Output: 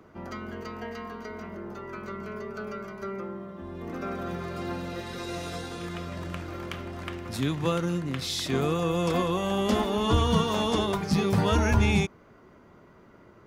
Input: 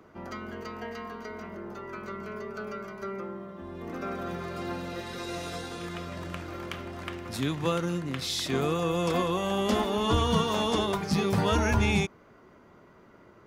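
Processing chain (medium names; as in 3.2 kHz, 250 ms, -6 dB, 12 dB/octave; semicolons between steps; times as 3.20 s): bass shelf 220 Hz +4 dB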